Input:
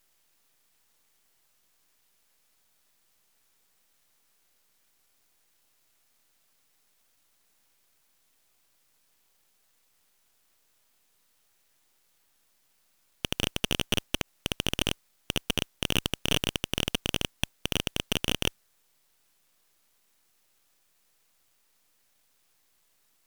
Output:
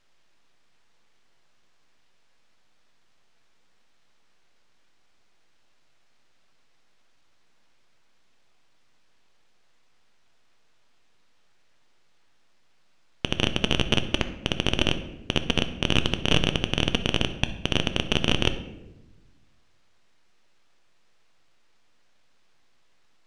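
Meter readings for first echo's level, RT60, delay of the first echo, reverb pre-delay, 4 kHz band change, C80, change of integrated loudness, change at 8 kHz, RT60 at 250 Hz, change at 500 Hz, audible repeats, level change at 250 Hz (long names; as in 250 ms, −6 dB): no echo audible, 1.0 s, no echo audible, 8 ms, +4.0 dB, 14.0 dB, +4.5 dB, −3.5 dB, 1.6 s, +6.5 dB, no echo audible, +7.0 dB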